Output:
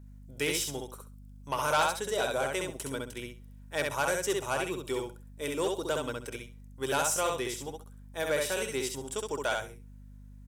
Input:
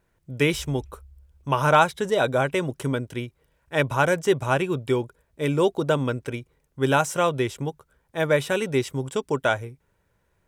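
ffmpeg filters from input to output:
ffmpeg -i in.wav -filter_complex "[0:a]asplit=2[link_01][link_02];[link_02]aecho=0:1:66|132|198:0.668|0.127|0.0241[link_03];[link_01][link_03]amix=inputs=2:normalize=0,asoftclip=type=tanh:threshold=-10.5dB,bass=frequency=250:gain=-12,treble=frequency=4000:gain=11,aeval=exprs='val(0)+0.01*(sin(2*PI*50*n/s)+sin(2*PI*2*50*n/s)/2+sin(2*PI*3*50*n/s)/3+sin(2*PI*4*50*n/s)/4+sin(2*PI*5*50*n/s)/5)':channel_layout=same,volume=-8dB" out.wav

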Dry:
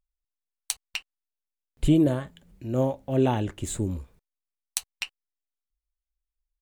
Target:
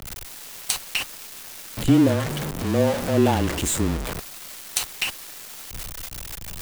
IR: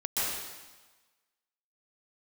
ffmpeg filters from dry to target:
-af "aeval=exprs='val(0)+0.5*0.0708*sgn(val(0))':channel_layout=same,highpass=frequency=100:poles=1,afreqshift=-22,acrusher=bits=8:dc=4:mix=0:aa=0.000001,volume=2dB"

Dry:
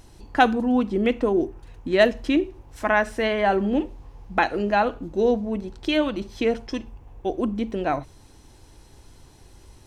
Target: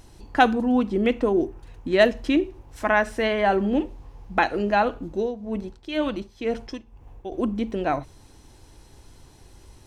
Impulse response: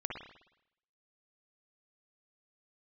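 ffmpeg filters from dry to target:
-filter_complex "[0:a]asettb=1/sr,asplit=3[link_01][link_02][link_03];[link_01]atrim=end=5.104[link_04];[link_02]atrim=start=5.1:end=7.32,asetpts=PTS-STARTPTS,afade=type=in:duration=0.004:curve=qsin,afade=type=out:start_time=2.216:duration=0.004:curve=qsin,tremolo=f=2:d=0.76[link_05];[link_03]atrim=start=7.316[link_06];[link_04][link_05]acrossfade=duration=0.004:curve1=hsin:curve2=qsin[link_07];[link_07][link_06]acrossfade=duration=0.004:curve1=qsin:curve2=hsin"

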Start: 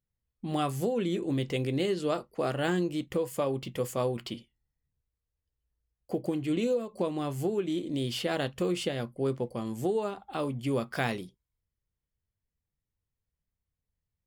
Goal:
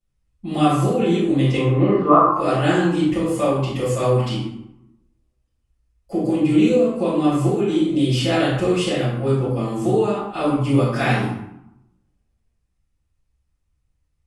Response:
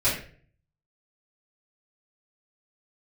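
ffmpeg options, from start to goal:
-filter_complex "[0:a]asettb=1/sr,asplit=3[link_01][link_02][link_03];[link_01]atrim=end=1.564[link_04];[link_02]atrim=start=1.56:end=2.33,asetpts=PTS-STARTPTS,afade=type=in:duration=0.004:curve=qsin,afade=type=out:start_time=0.766:duration=0.004:curve=qsin,lowpass=frequency=1100:width_type=q:width=10[link_05];[link_03]atrim=start=2.326[link_06];[link_04][link_05]acrossfade=duration=0.004:curve1=hsin:curve2=qsin[link_07];[link_07][link_06]acrossfade=duration=0.004:curve1=qsin:curve2=hsin[link_08];[1:a]atrim=start_sample=2205,asetrate=22932,aresample=44100[link_09];[link_08][link_09]afir=irnorm=-1:irlink=0,volume=-6.5dB"

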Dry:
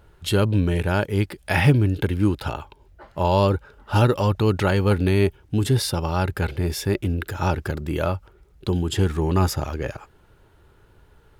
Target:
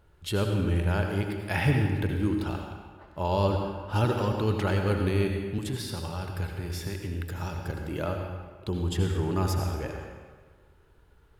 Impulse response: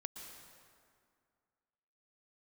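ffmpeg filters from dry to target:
-filter_complex "[0:a]asettb=1/sr,asplit=3[link_01][link_02][link_03];[link_01]atrim=end=5.584[link_04];[link_02]atrim=start=5.58:end=7.68,asetpts=PTS-STARTPTS,afade=type=in:duration=0.004:curve=qsin,afade=type=out:start_time=2.096:duration=0.004:curve=qsin,acrossover=split=220|990|3300[link_05][link_06][link_07][link_08];[link_05]acompressor=threshold=-26dB:ratio=4[link_09];[link_06]acompressor=threshold=-33dB:ratio=4[link_10];[link_07]acompressor=threshold=-37dB:ratio=4[link_11];[link_08]acompressor=threshold=-31dB:ratio=4[link_12];[link_09][link_10][link_11][link_12]amix=inputs=4:normalize=0[link_13];[link_03]atrim=start=7.676[link_14];[link_04][link_13]acrossfade=duration=0.004:curve1=hsin:curve2=qsin[link_15];[link_15][link_14]acrossfade=duration=0.004:curve1=qsin:curve2=hsin[link_16];[1:a]atrim=start_sample=2205,asetrate=66150,aresample=44100[link_17];[link_16][link_17]afir=irnorm=-1:irlink=0"

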